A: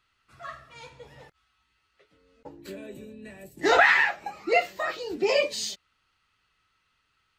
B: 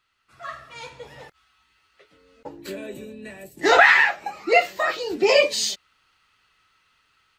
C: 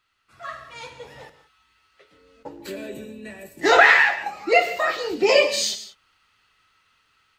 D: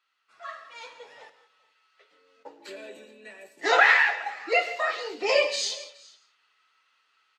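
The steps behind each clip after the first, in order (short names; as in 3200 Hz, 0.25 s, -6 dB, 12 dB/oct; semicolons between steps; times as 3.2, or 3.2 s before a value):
low shelf 240 Hz -6.5 dB; AGC gain up to 8 dB
non-linear reverb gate 0.21 s flat, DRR 10 dB
flange 1.3 Hz, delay 3.5 ms, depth 1.4 ms, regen -62%; BPF 500–7300 Hz; echo 0.417 s -23 dB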